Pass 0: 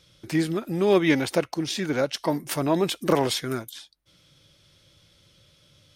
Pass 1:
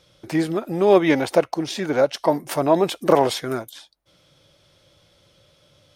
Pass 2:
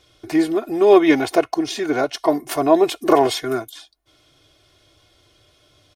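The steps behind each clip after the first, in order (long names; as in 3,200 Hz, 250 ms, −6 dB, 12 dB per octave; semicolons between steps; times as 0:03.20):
parametric band 690 Hz +10 dB 1.7 octaves; level −1 dB
comb filter 2.8 ms, depth 79%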